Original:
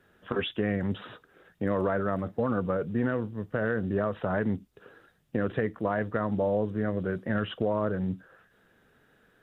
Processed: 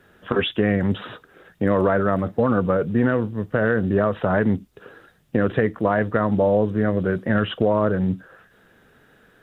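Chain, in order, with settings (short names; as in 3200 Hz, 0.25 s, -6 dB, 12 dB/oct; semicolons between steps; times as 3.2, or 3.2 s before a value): gain +8.5 dB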